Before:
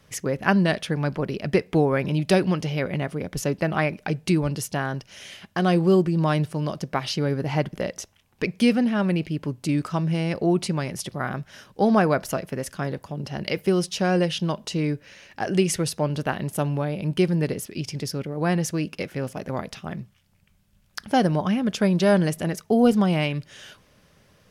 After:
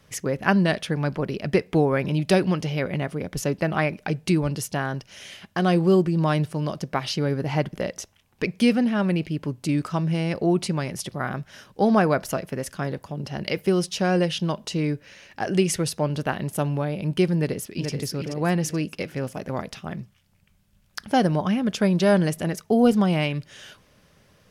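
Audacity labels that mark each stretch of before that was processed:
17.350000	17.900000	echo throw 0.43 s, feedback 40%, level -6 dB

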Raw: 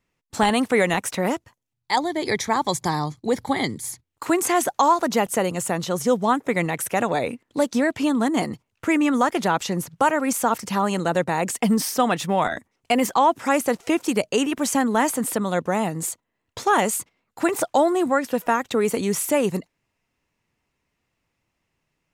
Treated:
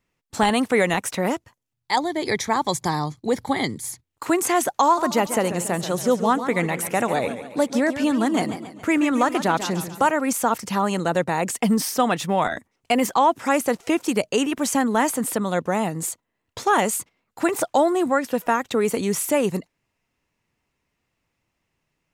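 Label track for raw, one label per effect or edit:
4.830000	10.070000	warbling echo 0.139 s, feedback 48%, depth 137 cents, level -11 dB

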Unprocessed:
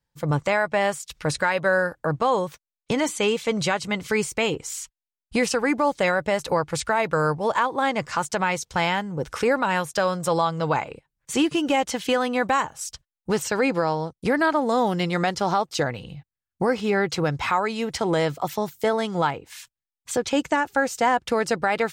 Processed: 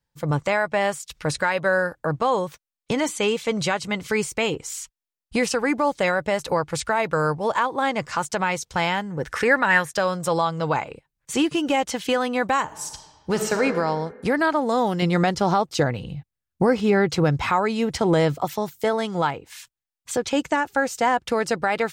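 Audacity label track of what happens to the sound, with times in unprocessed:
9.100000	9.940000	bell 1800 Hz +13.5 dB 0.45 oct
12.630000	13.630000	reverb throw, RT60 1.6 s, DRR 4 dB
15.020000	18.450000	low shelf 450 Hz +6.5 dB

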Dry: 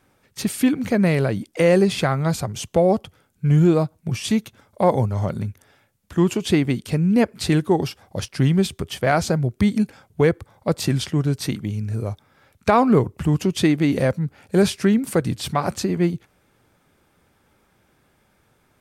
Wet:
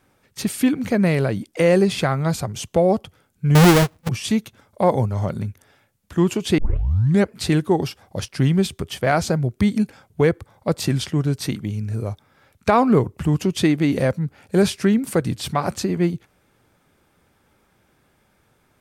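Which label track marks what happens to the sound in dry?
3.550000	4.090000	half-waves squared off
6.580000	6.580000	tape start 0.72 s

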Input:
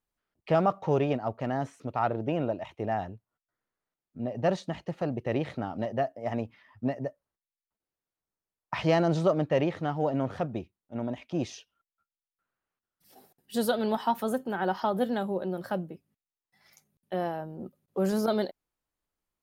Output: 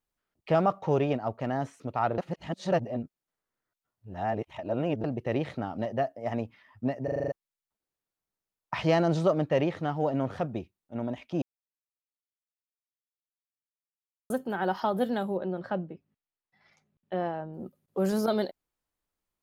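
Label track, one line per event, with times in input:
2.180000	5.040000	reverse
7.040000	7.040000	stutter in place 0.04 s, 7 plays
11.420000	14.300000	mute
15.370000	17.540000	LPF 3200 Hz

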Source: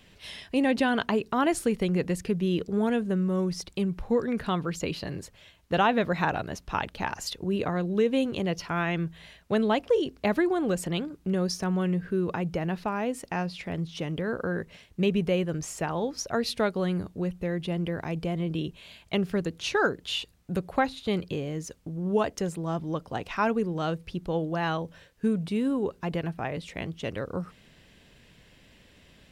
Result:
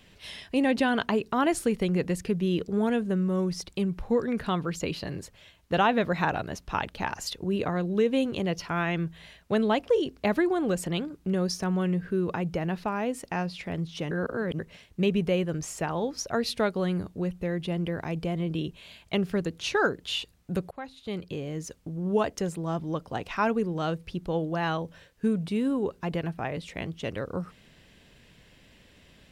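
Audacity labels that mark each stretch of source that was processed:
14.110000	14.590000	reverse
20.710000	21.660000	fade in, from -21 dB

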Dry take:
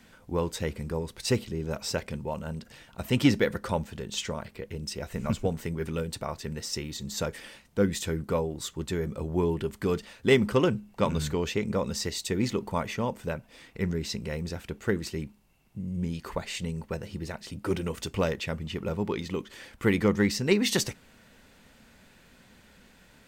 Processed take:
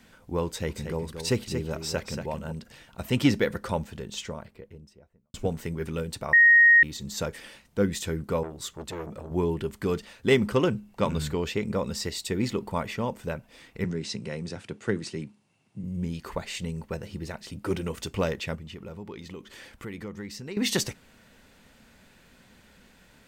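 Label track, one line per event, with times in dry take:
0.460000	2.520000	echo 0.231 s -7.5 dB
3.820000	5.340000	studio fade out
6.330000	6.830000	bleep 1870 Hz -12.5 dBFS
8.430000	9.310000	core saturation saturates under 940 Hz
11.110000	13.040000	notch 6200 Hz
13.840000	15.840000	Chebyshev band-pass 100–9700 Hz, order 4
18.550000	20.570000	compressor 2.5:1, threshold -41 dBFS

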